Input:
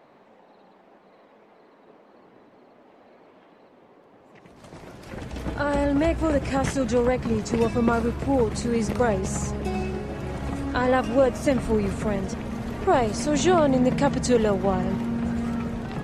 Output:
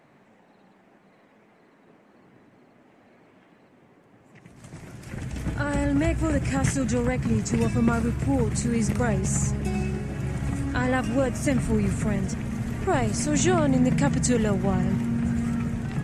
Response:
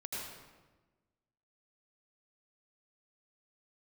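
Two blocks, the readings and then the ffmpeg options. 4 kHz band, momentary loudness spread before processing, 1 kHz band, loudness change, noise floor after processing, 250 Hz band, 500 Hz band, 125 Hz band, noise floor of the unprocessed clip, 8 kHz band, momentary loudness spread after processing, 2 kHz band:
-2.5 dB, 11 LU, -5.0 dB, -1.0 dB, -58 dBFS, +0.5 dB, -5.5 dB, +4.5 dB, -55 dBFS, +4.5 dB, 8 LU, 0.0 dB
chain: -af "equalizer=f=125:t=o:w=1:g=7,equalizer=f=500:t=o:w=1:g=-6,equalizer=f=1000:t=o:w=1:g=-5,equalizer=f=2000:t=o:w=1:g=3,equalizer=f=4000:t=o:w=1:g=-6,equalizer=f=8000:t=o:w=1:g=7"

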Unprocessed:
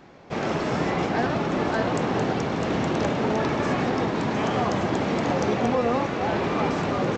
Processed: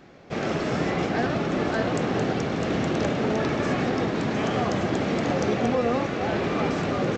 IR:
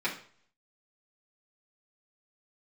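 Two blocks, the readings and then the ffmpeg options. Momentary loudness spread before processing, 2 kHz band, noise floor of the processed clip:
2 LU, -0.5 dB, -31 dBFS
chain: -af "equalizer=f=940:w=3.3:g=-6.5"

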